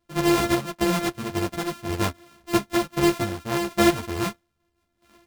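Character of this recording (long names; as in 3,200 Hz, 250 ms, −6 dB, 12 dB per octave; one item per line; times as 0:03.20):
a buzz of ramps at a fixed pitch in blocks of 128 samples
sample-and-hold tremolo 3.7 Hz
a shimmering, thickened sound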